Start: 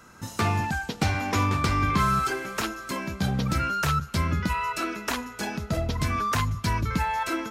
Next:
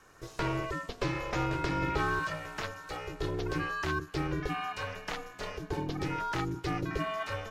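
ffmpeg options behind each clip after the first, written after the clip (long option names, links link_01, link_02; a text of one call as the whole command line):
ffmpeg -i in.wav -filter_complex "[0:a]aeval=exprs='val(0)*sin(2*PI*230*n/s)':channel_layout=same,acrossover=split=5800[link_01][link_02];[link_02]acompressor=threshold=-54dB:ratio=4:attack=1:release=60[link_03];[link_01][link_03]amix=inputs=2:normalize=0,volume=-4.5dB" out.wav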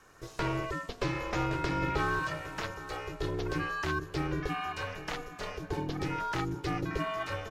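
ffmpeg -i in.wav -filter_complex "[0:a]asplit=2[link_01][link_02];[link_02]adelay=816.3,volume=-15dB,highshelf=frequency=4000:gain=-18.4[link_03];[link_01][link_03]amix=inputs=2:normalize=0" out.wav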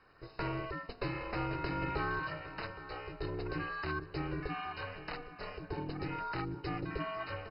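ffmpeg -i in.wav -af "volume=-5dB" -ar 48000 -c:a mp2 -b:a 32k out.mp2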